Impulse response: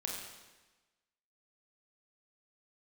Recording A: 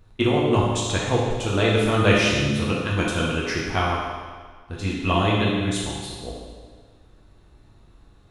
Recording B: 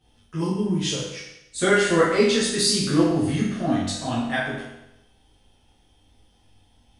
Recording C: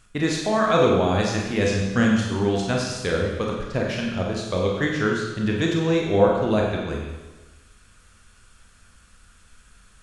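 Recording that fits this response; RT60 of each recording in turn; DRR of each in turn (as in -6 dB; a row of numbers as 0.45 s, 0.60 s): C; 1.6 s, 0.85 s, 1.2 s; -5.0 dB, -9.0 dB, -1.5 dB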